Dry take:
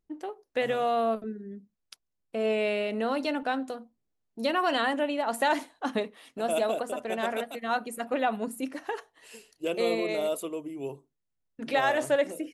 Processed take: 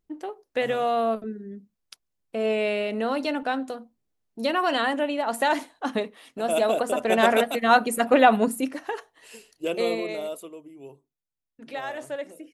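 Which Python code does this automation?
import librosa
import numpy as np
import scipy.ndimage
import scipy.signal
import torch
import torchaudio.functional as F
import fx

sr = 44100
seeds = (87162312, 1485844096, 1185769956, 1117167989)

y = fx.gain(x, sr, db=fx.line((6.43, 2.5), (7.19, 11.0), (8.41, 11.0), (8.81, 2.5), (9.8, 2.5), (10.62, -8.0)))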